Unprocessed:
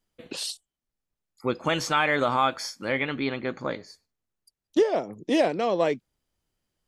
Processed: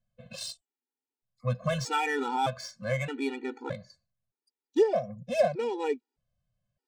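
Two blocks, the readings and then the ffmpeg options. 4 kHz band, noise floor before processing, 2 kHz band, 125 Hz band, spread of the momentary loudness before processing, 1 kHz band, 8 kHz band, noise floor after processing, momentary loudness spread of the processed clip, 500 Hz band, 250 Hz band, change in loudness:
-7.5 dB, under -85 dBFS, -7.0 dB, +3.0 dB, 11 LU, -4.5 dB, -5.5 dB, under -85 dBFS, 13 LU, -3.0 dB, -6.5 dB, -4.5 dB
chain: -af "adynamicsmooth=sensitivity=5:basefreq=3.9k,equalizer=f=125:t=o:w=0.33:g=11,equalizer=f=315:t=o:w=0.33:g=-7,equalizer=f=1.25k:t=o:w=0.33:g=-6,equalizer=f=2k:t=o:w=0.33:g=-5,equalizer=f=3.15k:t=o:w=0.33:g=-5,equalizer=f=8k:t=o:w=0.33:g=6,afftfilt=real='re*gt(sin(2*PI*0.81*pts/sr)*(1-2*mod(floor(b*sr/1024/250),2)),0)':imag='im*gt(sin(2*PI*0.81*pts/sr)*(1-2*mod(floor(b*sr/1024/250),2)),0)':win_size=1024:overlap=0.75"

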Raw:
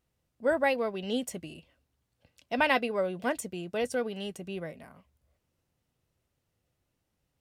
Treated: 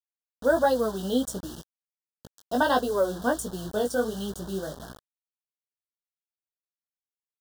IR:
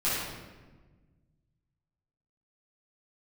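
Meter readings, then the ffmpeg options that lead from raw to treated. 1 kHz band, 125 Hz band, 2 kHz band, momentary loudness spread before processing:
+4.5 dB, +5.5 dB, -0.5 dB, 14 LU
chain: -af "aeval=exprs='val(0)+0.00224*(sin(2*PI*60*n/s)+sin(2*PI*2*60*n/s)/2+sin(2*PI*3*60*n/s)/3+sin(2*PI*4*60*n/s)/4+sin(2*PI*5*60*n/s)/5)':c=same,flanger=delay=15.5:depth=5.5:speed=1.4,acrusher=bits=7:mix=0:aa=0.000001,asuperstop=centerf=2300:order=8:qfactor=1.6,volume=7.5dB"

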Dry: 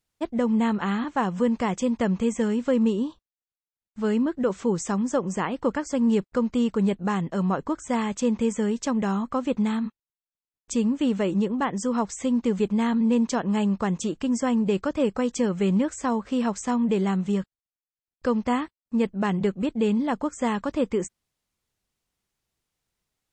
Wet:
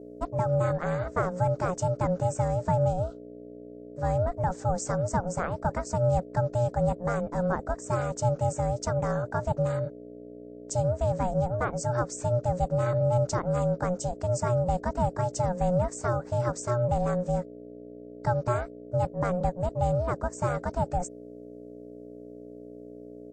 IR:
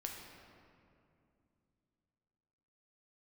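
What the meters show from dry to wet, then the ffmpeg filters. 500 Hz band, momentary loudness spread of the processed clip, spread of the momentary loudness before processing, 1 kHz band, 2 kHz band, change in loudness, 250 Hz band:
0.0 dB, 19 LU, 5 LU, +1.0 dB, -4.0 dB, -3.0 dB, -12.0 dB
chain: -af "firequalizer=gain_entry='entry(1100,0);entry(2700,-16);entry(5200,1)':delay=0.05:min_phase=1,aeval=exprs='val(0)+0.01*(sin(2*PI*60*n/s)+sin(2*PI*2*60*n/s)/2+sin(2*PI*3*60*n/s)/3+sin(2*PI*4*60*n/s)/4+sin(2*PI*5*60*n/s)/5)':c=same,aeval=exprs='val(0)*sin(2*PI*360*n/s)':c=same"

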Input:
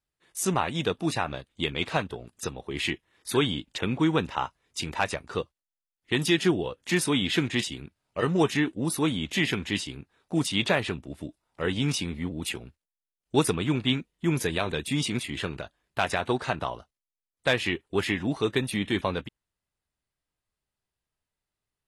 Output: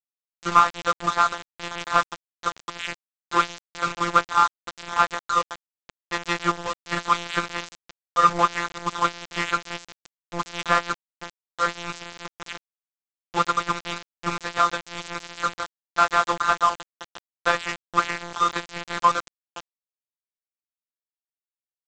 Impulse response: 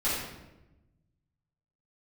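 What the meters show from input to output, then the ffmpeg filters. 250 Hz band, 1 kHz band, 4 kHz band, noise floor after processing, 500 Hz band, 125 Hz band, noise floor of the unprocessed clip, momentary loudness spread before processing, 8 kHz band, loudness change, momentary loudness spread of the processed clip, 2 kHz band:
-9.0 dB, +12.5 dB, -1.5 dB, under -85 dBFS, -3.0 dB, -9.0 dB, under -85 dBFS, 12 LU, -1.5 dB, +3.5 dB, 17 LU, +3.0 dB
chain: -filter_complex "[0:a]superequalizer=6b=0.398:10b=2.24:14b=0.251,asplit=2[a][b];[b]adelay=516,lowpass=f=1k:p=1,volume=-15.5dB,asplit=2[c][d];[d]adelay=516,lowpass=f=1k:p=1,volume=0.43,asplit=2[e][f];[f]adelay=516,lowpass=f=1k:p=1,volume=0.43,asplit=2[g][h];[h]adelay=516,lowpass=f=1k:p=1,volume=0.43[i];[c][e][g][i]amix=inputs=4:normalize=0[j];[a][j]amix=inputs=2:normalize=0,asplit=2[k][l];[l]highpass=f=720:p=1,volume=17dB,asoftclip=type=tanh:threshold=-7.5dB[m];[k][m]amix=inputs=2:normalize=0,lowpass=f=1.4k:p=1,volume=-6dB,afftfilt=real='hypot(re,im)*cos(PI*b)':imag='0':win_size=1024:overlap=0.75,equalizer=f=1.2k:t=o:w=0.94:g=12.5,aresample=16000,aeval=exprs='val(0)*gte(abs(val(0)),0.075)':c=same,aresample=44100,aeval=exprs='1*(cos(1*acos(clip(val(0)/1,-1,1)))-cos(1*PI/2))+0.112*(cos(2*acos(clip(val(0)/1,-1,1)))-cos(2*PI/2))+0.0251*(cos(7*acos(clip(val(0)/1,-1,1)))-cos(7*PI/2))+0.02*(cos(8*acos(clip(val(0)/1,-1,1)))-cos(8*PI/2))':c=same,volume=-2dB"

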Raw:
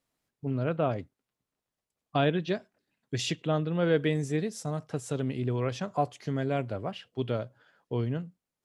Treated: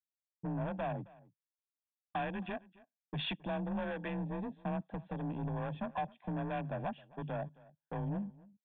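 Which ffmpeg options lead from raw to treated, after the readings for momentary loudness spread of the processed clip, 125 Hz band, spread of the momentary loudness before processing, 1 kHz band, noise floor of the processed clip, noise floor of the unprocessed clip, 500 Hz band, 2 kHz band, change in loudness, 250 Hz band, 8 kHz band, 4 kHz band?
7 LU, -9.0 dB, 9 LU, -5.0 dB, under -85 dBFS, under -85 dBFS, -11.0 dB, -6.5 dB, -8.5 dB, -7.0 dB, under -35 dB, -7.5 dB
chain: -filter_complex "[0:a]lowshelf=f=130:g=-7.5,afreqshift=29,afwtdn=0.0126,highpass=f=91:w=0.5412,highpass=f=91:w=1.3066,acompressor=threshold=-32dB:ratio=6,asoftclip=type=tanh:threshold=-35.5dB,aecho=1:1:1.2:0.62,aresample=8000,aresample=44100,agate=range=-33dB:threshold=-57dB:ratio=3:detection=peak,asplit=2[a][b];[b]aecho=0:1:267:0.0794[c];[a][c]amix=inputs=2:normalize=0,volume=2.5dB"

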